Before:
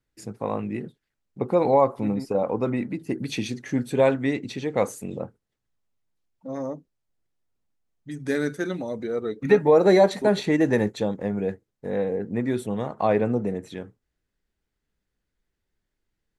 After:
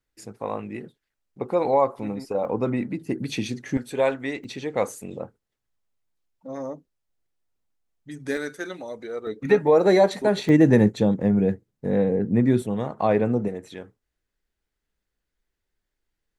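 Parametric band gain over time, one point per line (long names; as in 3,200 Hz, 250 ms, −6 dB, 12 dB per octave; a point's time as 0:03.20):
parametric band 150 Hz 2.3 octaves
−6.5 dB
from 0:02.45 +1 dB
from 0:03.77 −10.5 dB
from 0:04.44 −4.5 dB
from 0:08.37 −13.5 dB
from 0:09.27 −2 dB
from 0:10.49 +9.5 dB
from 0:12.62 +2 dB
from 0:13.48 −6 dB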